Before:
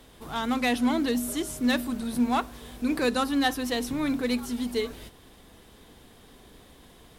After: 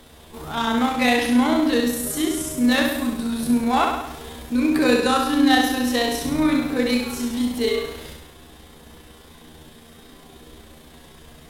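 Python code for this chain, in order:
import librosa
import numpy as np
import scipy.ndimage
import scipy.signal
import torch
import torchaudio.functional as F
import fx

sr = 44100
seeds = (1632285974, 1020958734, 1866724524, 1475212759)

y = fx.room_flutter(x, sr, wall_m=6.1, rt60_s=0.53)
y = fx.stretch_grains(y, sr, factor=1.6, grain_ms=68.0)
y = y * 10.0 ** (6.0 / 20.0)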